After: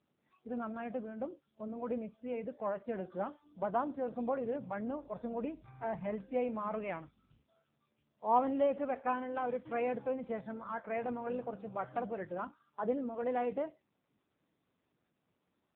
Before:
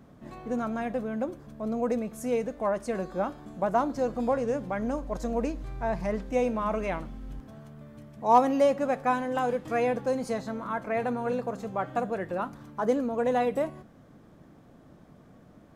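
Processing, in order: spectral noise reduction 26 dB; gain -7 dB; AMR-NB 6.7 kbps 8000 Hz

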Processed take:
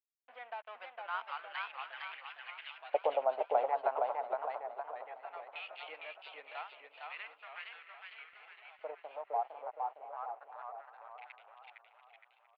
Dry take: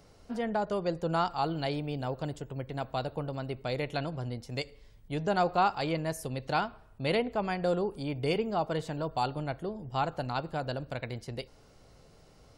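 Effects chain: Doppler pass-by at 2.91, 19 m/s, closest 21 m; HPF 170 Hz 6 dB/oct; high shelf 4800 Hz -5.5 dB; in parallel at +3 dB: compressor, threshold -51 dBFS, peak gain reduction 20.5 dB; on the sum: crossover distortion -46 dBFS; LFO high-pass saw up 0.34 Hz 500–3200 Hz; on a send: feedback echo 0.689 s, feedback 33%, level -17 dB; on the sum: LFO band-pass square 0.18 Hz 780–2700 Hz; air absorption 480 m; warbling echo 0.461 s, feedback 50%, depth 130 cents, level -3.5 dB; gain +8.5 dB

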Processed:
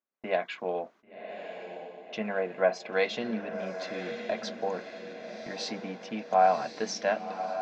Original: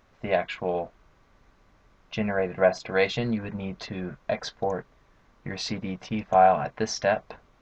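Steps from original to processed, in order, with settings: HPF 210 Hz 24 dB/oct; gate -50 dBFS, range -29 dB; on a send: diffused feedback echo 1.073 s, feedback 50%, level -8.5 dB; on the sum: gain -4 dB

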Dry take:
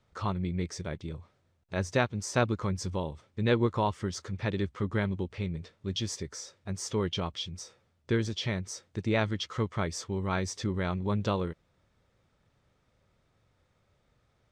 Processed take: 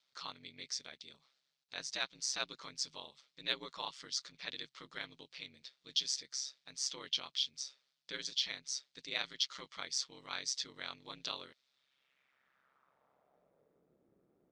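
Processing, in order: ring modulator 67 Hz; band-pass sweep 4400 Hz -> 350 Hz, 11.67–13.9; added harmonics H 5 -37 dB, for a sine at -26.5 dBFS; gain +9 dB

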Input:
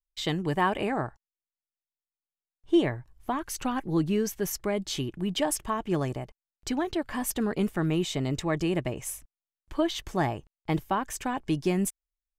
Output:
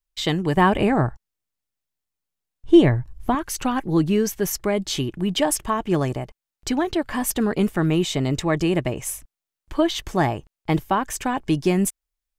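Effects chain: 0.57–3.35 low shelf 210 Hz +11.5 dB; gain +6.5 dB

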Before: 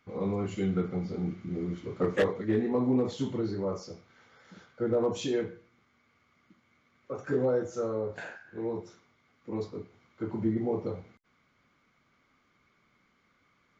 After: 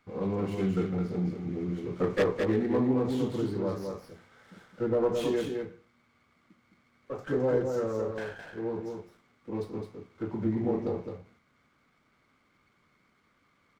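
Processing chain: on a send: echo 0.213 s -5 dB; on the sum: running maximum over 5 samples

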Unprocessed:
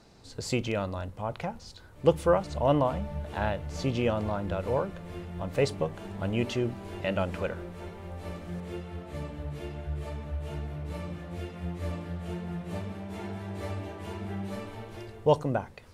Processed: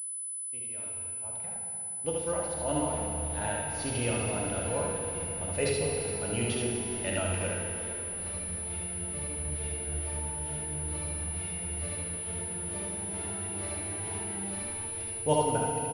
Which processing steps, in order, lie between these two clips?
opening faded in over 4.45 s; expander -41 dBFS; high shelf 2600 Hz +10.5 dB; notch 1100 Hz, Q 7.4; early reflections 67 ms -6 dB, 77 ms -5 dB; FDN reverb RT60 3.2 s, low-frequency decay 1.25×, high-frequency decay 0.9×, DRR -0.5 dB; pulse-width modulation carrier 10000 Hz; gain -7 dB

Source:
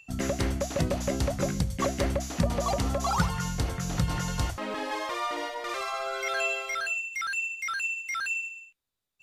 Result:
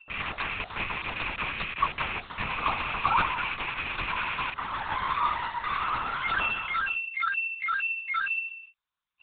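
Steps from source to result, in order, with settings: rattling part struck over -32 dBFS, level -19 dBFS; resonant low shelf 710 Hz -12 dB, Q 3; LPC vocoder at 8 kHz whisper

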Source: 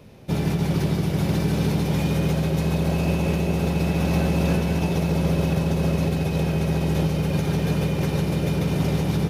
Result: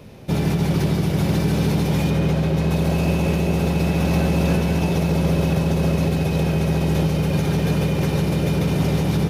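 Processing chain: 2.1–2.71 high shelf 6000 Hz -9 dB; in parallel at -2 dB: limiter -21.5 dBFS, peak gain reduction 10 dB

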